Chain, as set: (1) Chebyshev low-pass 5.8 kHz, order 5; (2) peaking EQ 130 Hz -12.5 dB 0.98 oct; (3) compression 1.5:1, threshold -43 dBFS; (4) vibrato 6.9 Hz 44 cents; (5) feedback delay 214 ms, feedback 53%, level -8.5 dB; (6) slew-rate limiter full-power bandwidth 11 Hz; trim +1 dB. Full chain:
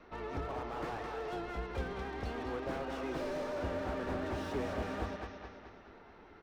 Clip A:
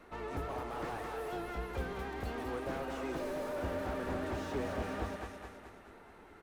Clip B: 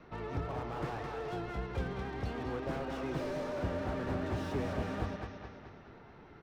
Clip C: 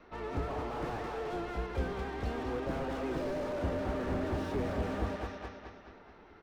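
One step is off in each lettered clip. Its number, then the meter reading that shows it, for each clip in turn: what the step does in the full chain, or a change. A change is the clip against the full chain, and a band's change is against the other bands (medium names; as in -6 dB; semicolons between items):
1, 8 kHz band +3.5 dB; 2, 125 Hz band +6.0 dB; 3, mean gain reduction 3.5 dB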